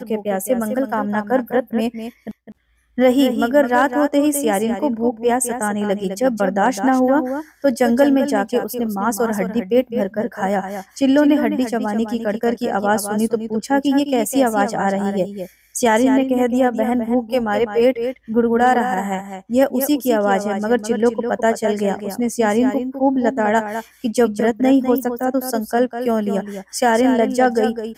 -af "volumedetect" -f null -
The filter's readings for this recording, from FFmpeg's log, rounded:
mean_volume: -18.1 dB
max_volume: -4.8 dB